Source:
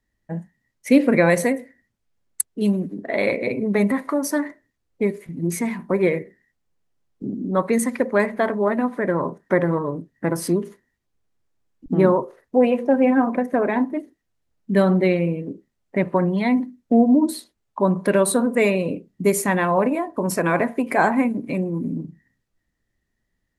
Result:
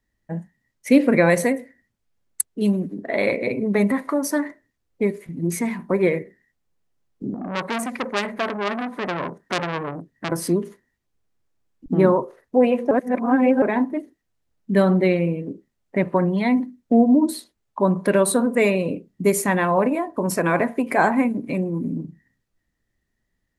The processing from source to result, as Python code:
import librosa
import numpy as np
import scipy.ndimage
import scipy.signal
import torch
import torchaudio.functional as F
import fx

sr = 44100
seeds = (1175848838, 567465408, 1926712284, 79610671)

y = fx.transformer_sat(x, sr, knee_hz=3000.0, at=(7.34, 10.32))
y = fx.edit(y, sr, fx.reverse_span(start_s=12.91, length_s=0.71), tone=tone)